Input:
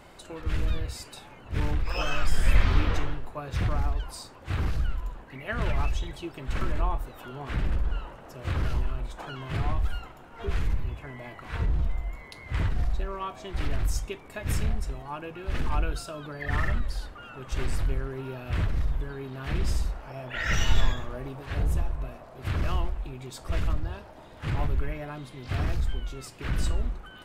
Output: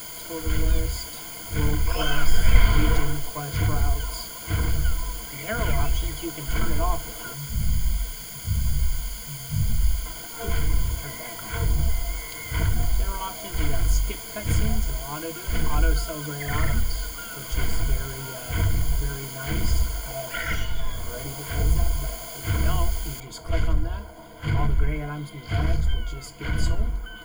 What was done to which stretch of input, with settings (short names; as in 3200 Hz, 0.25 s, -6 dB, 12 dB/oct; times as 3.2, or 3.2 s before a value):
7.34–10.06 brick-wall FIR band-stop 240–4500 Hz
20.34–21.18 dip -10 dB, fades 0.34 s
23.2 noise floor step -42 dB -62 dB
whole clip: ripple EQ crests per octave 1.8, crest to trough 16 dB; gain +1 dB